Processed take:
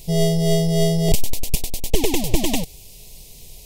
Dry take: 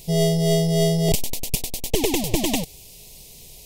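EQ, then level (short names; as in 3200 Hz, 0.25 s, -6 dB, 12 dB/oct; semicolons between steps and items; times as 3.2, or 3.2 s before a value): low shelf 61 Hz +9.5 dB; 0.0 dB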